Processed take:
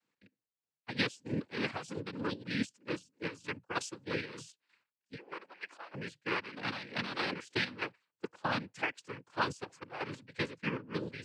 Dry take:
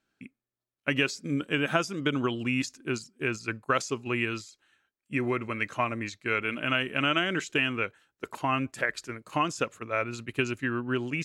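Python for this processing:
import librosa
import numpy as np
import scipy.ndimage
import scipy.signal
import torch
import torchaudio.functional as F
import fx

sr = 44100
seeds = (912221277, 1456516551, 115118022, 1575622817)

y = fx.ladder_highpass(x, sr, hz=380.0, resonance_pct=25, at=(5.15, 5.93))
y = fx.chopper(y, sr, hz=3.2, depth_pct=65, duty_pct=45)
y = fx.noise_vocoder(y, sr, seeds[0], bands=8)
y = y * librosa.db_to_amplitude(-5.5)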